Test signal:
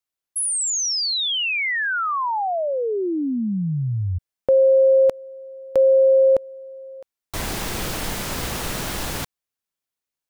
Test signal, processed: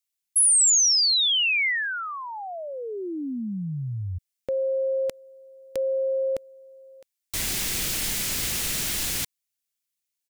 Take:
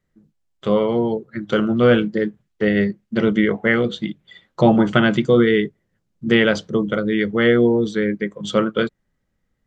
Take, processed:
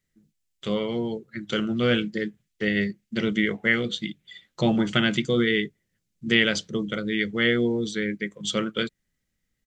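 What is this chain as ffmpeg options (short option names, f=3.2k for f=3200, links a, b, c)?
-af "firequalizer=gain_entry='entry(260,0);entry(550,-4);entry(1000,-5);entry(2100,7);entry(7200,12)':delay=0.05:min_phase=1,volume=-7dB"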